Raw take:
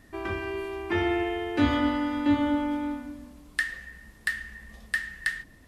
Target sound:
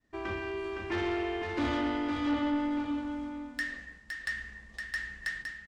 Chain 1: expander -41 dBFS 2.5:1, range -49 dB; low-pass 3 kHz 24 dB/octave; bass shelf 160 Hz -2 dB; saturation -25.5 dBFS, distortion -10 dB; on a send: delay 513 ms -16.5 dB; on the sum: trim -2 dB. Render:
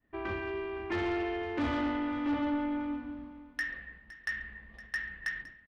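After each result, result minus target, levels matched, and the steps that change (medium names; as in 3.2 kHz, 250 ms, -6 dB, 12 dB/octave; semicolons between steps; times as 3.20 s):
echo-to-direct -11 dB; 8 kHz band -4.5 dB
change: delay 513 ms -5.5 dB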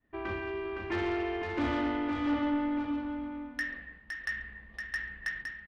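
8 kHz band -4.5 dB
change: low-pass 7.6 kHz 24 dB/octave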